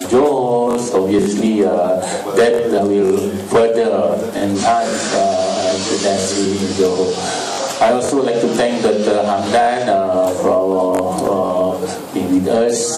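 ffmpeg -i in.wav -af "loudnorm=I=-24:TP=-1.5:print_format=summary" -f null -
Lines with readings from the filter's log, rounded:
Input Integrated:    -15.7 LUFS
Input True Peak:      -5.6 dBTP
Input LRA:             1.4 LU
Input Threshold:     -25.7 LUFS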